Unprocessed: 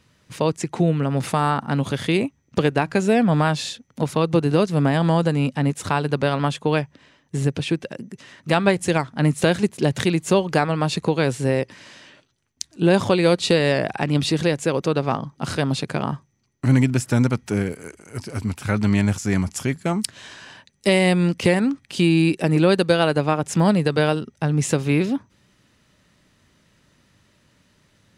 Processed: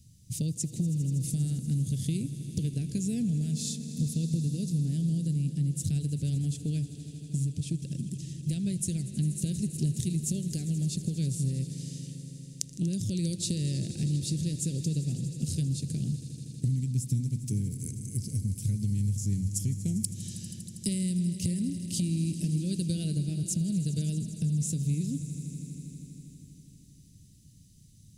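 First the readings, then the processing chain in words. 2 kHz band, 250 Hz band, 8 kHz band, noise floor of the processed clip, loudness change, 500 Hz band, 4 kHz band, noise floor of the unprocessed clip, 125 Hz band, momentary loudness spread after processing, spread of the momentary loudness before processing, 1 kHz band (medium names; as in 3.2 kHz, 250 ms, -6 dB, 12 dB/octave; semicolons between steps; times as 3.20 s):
under -25 dB, -10.0 dB, -1.5 dB, -54 dBFS, -10.0 dB, -26.0 dB, -13.5 dB, -63 dBFS, -5.5 dB, 8 LU, 10 LU, under -40 dB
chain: Chebyshev band-stop 130–7700 Hz, order 2; compression 6:1, threshold -35 dBFS, peak gain reduction 18 dB; on a send: echo with a slow build-up 80 ms, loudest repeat 5, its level -17 dB; on the sum: trim +7 dB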